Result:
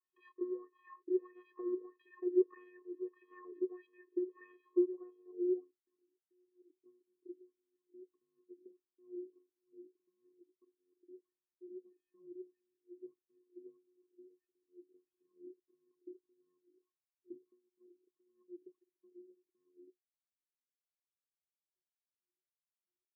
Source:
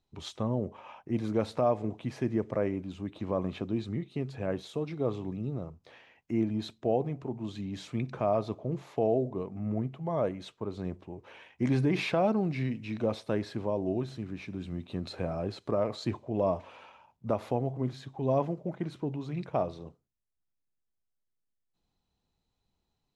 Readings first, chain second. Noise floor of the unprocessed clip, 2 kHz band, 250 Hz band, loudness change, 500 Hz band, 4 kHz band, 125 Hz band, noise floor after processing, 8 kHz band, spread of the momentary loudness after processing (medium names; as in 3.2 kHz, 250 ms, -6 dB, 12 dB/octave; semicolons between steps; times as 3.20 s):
-81 dBFS, under -20 dB, -11.0 dB, -7.0 dB, -10.5 dB, under -35 dB, under -40 dB, under -85 dBFS, no reading, 23 LU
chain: in parallel at +2 dB: compression, threshold -35 dBFS, peak gain reduction 13 dB; on the sum: vocoder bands 8, square 361 Hz; low-pass sweep 1.6 kHz -> 140 Hz, 4.50–6.15 s; Chebyshev shaper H 2 -31 dB, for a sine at -13.5 dBFS; wah-wah 1.6 Hz 310–3300 Hz, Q 5; trim -3 dB